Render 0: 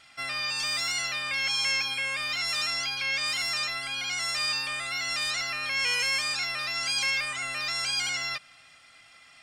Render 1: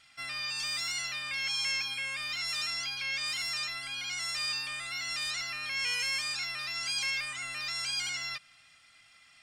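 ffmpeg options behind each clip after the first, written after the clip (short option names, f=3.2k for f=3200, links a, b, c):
-af "equalizer=f=550:t=o:w=2.3:g=-7,volume=-4dB"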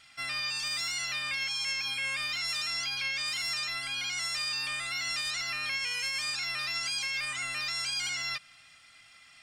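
-af "alimiter=level_in=4dB:limit=-24dB:level=0:latency=1,volume=-4dB,volume=3.5dB"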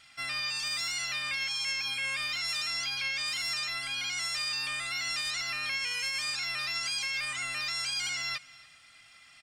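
-af "aecho=1:1:285:0.0794"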